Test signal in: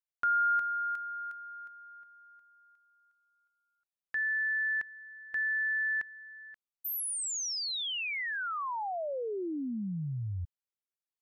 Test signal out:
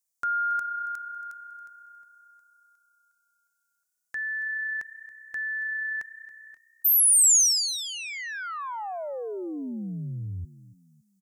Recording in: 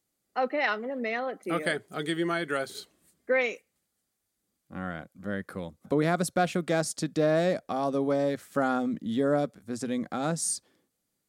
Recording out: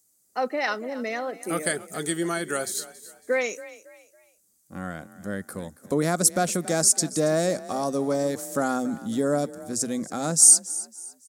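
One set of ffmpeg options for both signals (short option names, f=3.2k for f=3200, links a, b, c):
-filter_complex "[0:a]highshelf=f=4.7k:t=q:w=1.5:g=13,asplit=4[a][b][c][d];[b]adelay=277,afreqshift=31,volume=-17dB[e];[c]adelay=554,afreqshift=62,volume=-26.1dB[f];[d]adelay=831,afreqshift=93,volume=-35.2dB[g];[a][e][f][g]amix=inputs=4:normalize=0,volume=1.5dB"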